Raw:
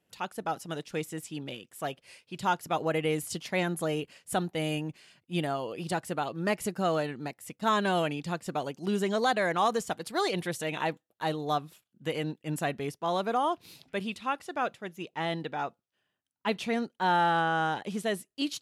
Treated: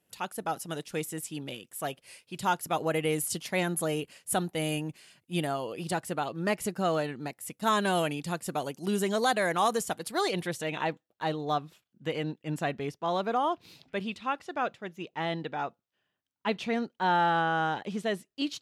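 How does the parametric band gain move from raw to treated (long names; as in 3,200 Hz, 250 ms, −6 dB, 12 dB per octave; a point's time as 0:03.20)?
parametric band 11,000 Hz 0.97 octaves
0:05.39 +8.5 dB
0:06.28 +1.5 dB
0:07.19 +1.5 dB
0:07.64 +11 dB
0:09.70 +11 dB
0:10.41 +1 dB
0:10.85 −10 dB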